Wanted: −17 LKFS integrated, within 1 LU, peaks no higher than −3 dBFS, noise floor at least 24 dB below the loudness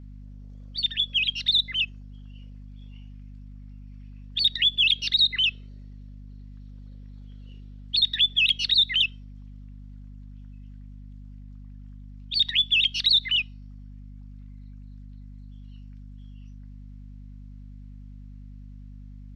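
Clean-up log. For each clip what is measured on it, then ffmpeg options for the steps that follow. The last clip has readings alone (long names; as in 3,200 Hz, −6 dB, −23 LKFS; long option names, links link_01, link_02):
mains hum 50 Hz; hum harmonics up to 250 Hz; level of the hum −40 dBFS; integrated loudness −21.5 LKFS; sample peak −11.5 dBFS; target loudness −17.0 LKFS
→ -af "bandreject=frequency=50:width_type=h:width=6,bandreject=frequency=100:width_type=h:width=6,bandreject=frequency=150:width_type=h:width=6,bandreject=frequency=200:width_type=h:width=6,bandreject=frequency=250:width_type=h:width=6"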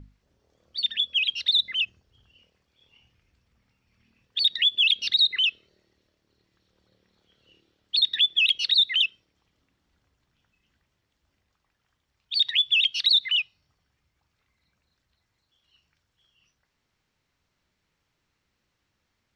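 mains hum none found; integrated loudness −21.0 LKFS; sample peak −11.5 dBFS; target loudness −17.0 LKFS
→ -af "volume=4dB"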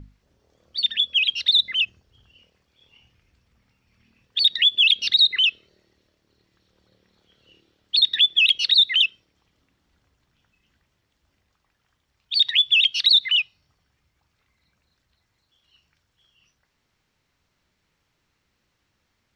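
integrated loudness −17.0 LKFS; sample peak −7.5 dBFS; background noise floor −73 dBFS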